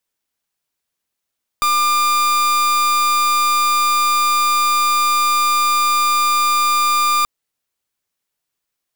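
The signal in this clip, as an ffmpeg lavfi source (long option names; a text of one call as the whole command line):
ffmpeg -f lavfi -i "aevalsrc='0.168*(2*lt(mod(1200*t,1),0.41)-1)':duration=5.63:sample_rate=44100" out.wav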